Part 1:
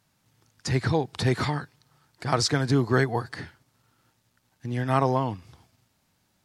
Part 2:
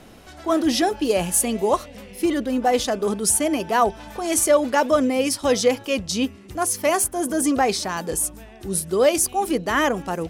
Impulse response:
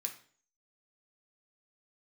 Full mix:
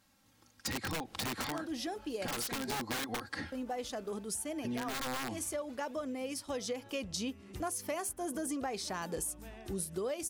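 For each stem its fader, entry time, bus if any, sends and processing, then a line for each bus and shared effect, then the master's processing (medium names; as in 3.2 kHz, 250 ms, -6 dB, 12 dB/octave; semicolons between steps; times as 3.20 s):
-1.5 dB, 0.00 s, no send, comb 3.7 ms, depth 85%; compression 1.5:1, threshold -28 dBFS, peak gain reduction 4.5 dB; integer overflow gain 21 dB
-5.5 dB, 1.05 s, muted 2.75–3.52 s, no send, auto duck -10 dB, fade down 1.80 s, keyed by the first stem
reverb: none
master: compression 10:1, threshold -34 dBFS, peak gain reduction 16.5 dB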